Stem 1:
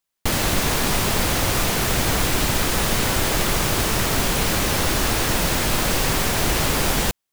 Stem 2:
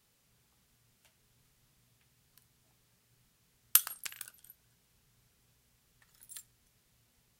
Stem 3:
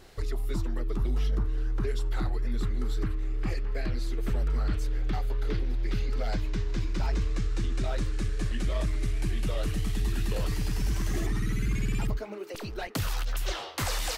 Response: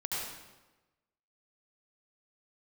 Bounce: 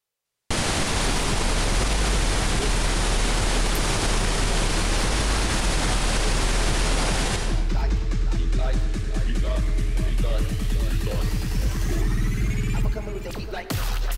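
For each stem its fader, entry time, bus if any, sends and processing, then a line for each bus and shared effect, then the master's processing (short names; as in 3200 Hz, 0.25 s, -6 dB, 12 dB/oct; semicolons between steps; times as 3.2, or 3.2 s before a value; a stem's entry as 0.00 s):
-4.5 dB, 0.25 s, send -5 dB, no echo send, elliptic low-pass 10000 Hz, stop band 80 dB
-11.5 dB, 0.00 s, no send, no echo send, resonant low shelf 340 Hz -10 dB, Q 1.5
+2.5 dB, 0.75 s, send -13.5 dB, echo send -8.5 dB, dry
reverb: on, RT60 1.1 s, pre-delay 66 ms
echo: echo 0.516 s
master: limiter -13 dBFS, peak gain reduction 7 dB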